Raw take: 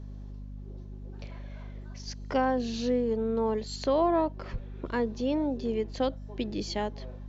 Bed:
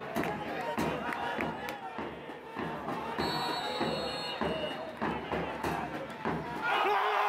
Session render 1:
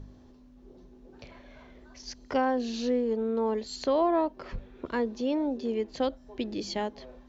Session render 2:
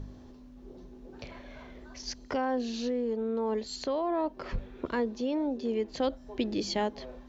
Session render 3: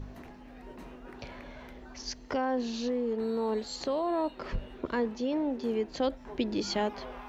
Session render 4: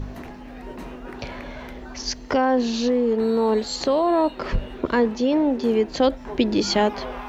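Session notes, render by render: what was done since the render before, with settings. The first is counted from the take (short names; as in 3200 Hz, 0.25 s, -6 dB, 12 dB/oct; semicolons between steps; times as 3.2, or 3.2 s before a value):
de-hum 50 Hz, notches 4
limiter -22 dBFS, peak gain reduction 6.5 dB; vocal rider within 4 dB 0.5 s
add bed -18 dB
gain +10.5 dB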